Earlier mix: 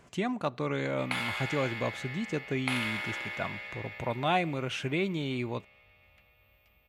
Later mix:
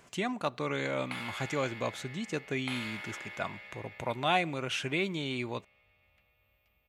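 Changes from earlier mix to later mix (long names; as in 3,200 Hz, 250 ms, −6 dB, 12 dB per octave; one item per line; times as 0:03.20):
speech: add spectral tilt +1.5 dB per octave
background −7.0 dB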